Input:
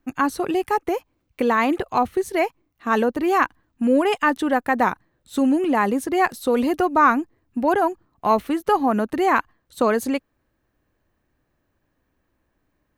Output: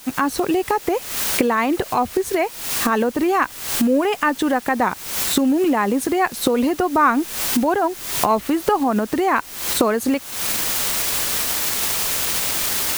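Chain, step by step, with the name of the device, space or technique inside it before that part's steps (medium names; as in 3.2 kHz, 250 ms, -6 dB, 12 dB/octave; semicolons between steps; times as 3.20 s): cheap recorder with automatic gain (white noise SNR 21 dB; recorder AGC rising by 73 dB/s)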